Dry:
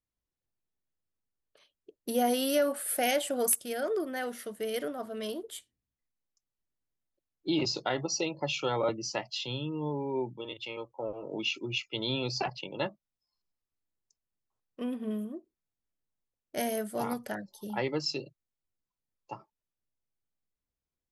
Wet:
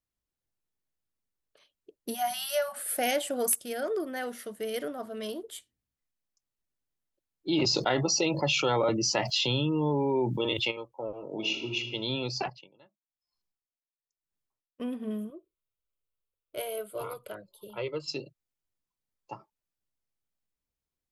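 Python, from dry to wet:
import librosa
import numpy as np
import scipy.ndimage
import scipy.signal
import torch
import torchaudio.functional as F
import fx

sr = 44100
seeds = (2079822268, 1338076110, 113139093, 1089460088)

y = fx.spec_erase(x, sr, start_s=2.14, length_s=0.63, low_hz=220.0, high_hz=560.0)
y = fx.env_flatten(y, sr, amount_pct=70, at=(7.51, 10.7), fade=0.02)
y = fx.reverb_throw(y, sr, start_s=11.33, length_s=0.45, rt60_s=1.1, drr_db=3.0)
y = fx.tremolo_db(y, sr, hz=1.0, depth_db=29, at=(12.4, 14.8))
y = fx.fixed_phaser(y, sr, hz=1200.0, stages=8, at=(15.3, 18.08))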